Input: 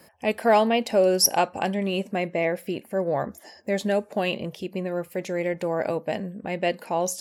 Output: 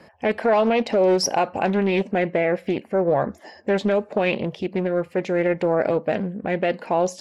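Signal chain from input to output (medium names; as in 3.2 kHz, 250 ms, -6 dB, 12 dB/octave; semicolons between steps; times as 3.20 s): Bessel low-pass 3.2 kHz, order 2; peak limiter -17 dBFS, peak gain reduction 7.5 dB; loudspeaker Doppler distortion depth 0.38 ms; trim +6 dB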